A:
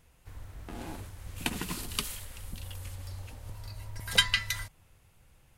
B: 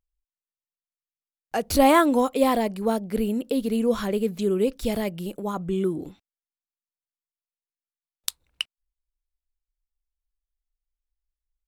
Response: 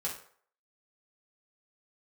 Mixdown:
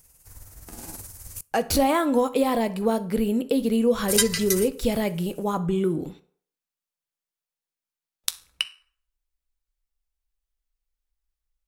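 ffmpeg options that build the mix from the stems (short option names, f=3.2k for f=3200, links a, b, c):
-filter_complex "[0:a]tremolo=f=19:d=0.51,aexciter=amount=7:drive=4.1:freq=4.9k,volume=-0.5dB,asplit=3[a][b][c];[a]atrim=end=1.41,asetpts=PTS-STARTPTS,afade=t=out:st=1.406:d=0.004:c=hsin[d];[b]atrim=start=1.41:end=4.08,asetpts=PTS-STARTPTS,volume=0[e];[c]atrim=start=4.08,asetpts=PTS-STARTPTS,afade=t=in:d=0.004:c=hsin[f];[d][e][f]concat=n=3:v=0:a=1,asplit=2[g][h];[h]volume=-22dB[i];[1:a]acompressor=threshold=-22dB:ratio=5,volume=2dB,asplit=2[j][k];[k]volume=-10.5dB[l];[2:a]atrim=start_sample=2205[m];[i][l]amix=inputs=2:normalize=0[n];[n][m]afir=irnorm=-1:irlink=0[o];[g][j][o]amix=inputs=3:normalize=0"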